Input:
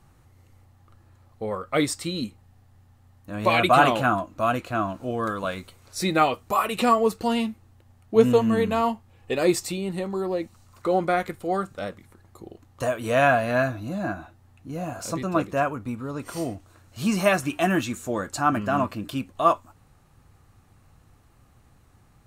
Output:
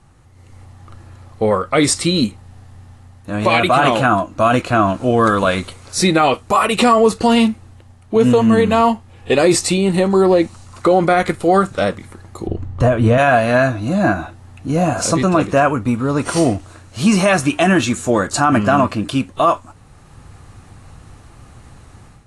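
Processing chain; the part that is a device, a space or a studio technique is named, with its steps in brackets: 12.47–13.18 s: RIAA curve playback; low-bitrate web radio (level rider gain up to 10 dB; peak limiter -10 dBFS, peak gain reduction 8.5 dB; trim +6 dB; AAC 48 kbps 24 kHz)

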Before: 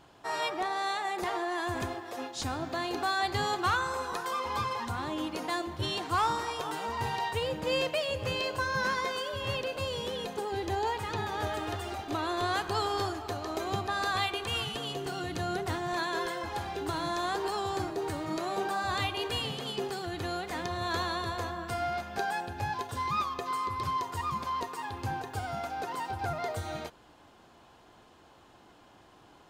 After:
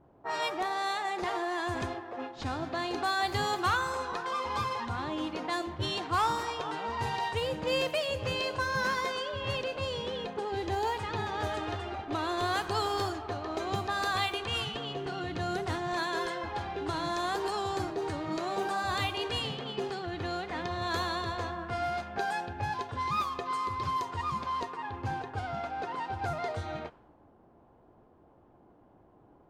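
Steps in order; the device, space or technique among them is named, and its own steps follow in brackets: cassette deck with a dynamic noise filter (white noise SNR 26 dB; level-controlled noise filter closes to 570 Hz, open at -27 dBFS)

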